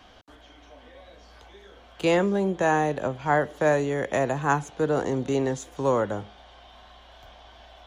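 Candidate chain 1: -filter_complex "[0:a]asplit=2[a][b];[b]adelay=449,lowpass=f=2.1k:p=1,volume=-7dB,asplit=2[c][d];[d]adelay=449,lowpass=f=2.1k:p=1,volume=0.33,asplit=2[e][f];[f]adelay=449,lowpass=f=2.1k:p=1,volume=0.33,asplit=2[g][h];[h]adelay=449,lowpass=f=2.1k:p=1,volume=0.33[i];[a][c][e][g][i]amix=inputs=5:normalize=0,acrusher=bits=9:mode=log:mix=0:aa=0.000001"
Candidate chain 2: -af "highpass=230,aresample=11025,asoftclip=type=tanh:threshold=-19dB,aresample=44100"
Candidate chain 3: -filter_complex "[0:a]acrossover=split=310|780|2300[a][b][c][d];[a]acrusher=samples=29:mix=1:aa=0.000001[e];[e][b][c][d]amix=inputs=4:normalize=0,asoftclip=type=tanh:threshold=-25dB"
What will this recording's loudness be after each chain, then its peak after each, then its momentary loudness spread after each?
-24.5, -28.5, -30.5 LUFS; -8.5, -18.0, -25.0 dBFS; 10, 5, 21 LU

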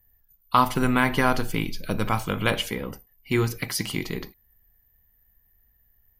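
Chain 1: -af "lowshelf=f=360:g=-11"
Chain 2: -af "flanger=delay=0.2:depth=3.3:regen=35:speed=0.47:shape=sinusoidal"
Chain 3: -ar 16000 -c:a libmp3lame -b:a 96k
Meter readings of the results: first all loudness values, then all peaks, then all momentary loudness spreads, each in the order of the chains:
-27.5, -29.0, -25.5 LUFS; -6.0, -10.5, -6.0 dBFS; 14, 11, 12 LU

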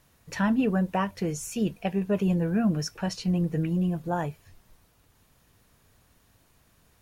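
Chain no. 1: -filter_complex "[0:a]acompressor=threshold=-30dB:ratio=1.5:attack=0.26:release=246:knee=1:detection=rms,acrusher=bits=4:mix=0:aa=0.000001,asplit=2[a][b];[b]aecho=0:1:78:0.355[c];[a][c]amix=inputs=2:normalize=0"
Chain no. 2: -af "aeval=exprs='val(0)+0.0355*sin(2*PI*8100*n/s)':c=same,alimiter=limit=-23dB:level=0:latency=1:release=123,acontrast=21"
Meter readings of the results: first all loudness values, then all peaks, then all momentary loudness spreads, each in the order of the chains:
-29.0, -24.5 LUFS; -17.5, -18.0 dBFS; 6, 2 LU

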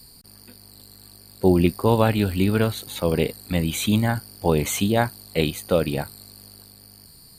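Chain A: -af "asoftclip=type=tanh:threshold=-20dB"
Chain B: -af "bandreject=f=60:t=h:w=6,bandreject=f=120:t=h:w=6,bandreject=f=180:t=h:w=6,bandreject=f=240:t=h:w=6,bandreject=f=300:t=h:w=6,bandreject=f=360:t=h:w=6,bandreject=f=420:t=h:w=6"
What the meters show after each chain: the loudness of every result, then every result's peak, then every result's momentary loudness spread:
-27.0, -23.0 LUFS; -20.0, -4.0 dBFS; 20, 7 LU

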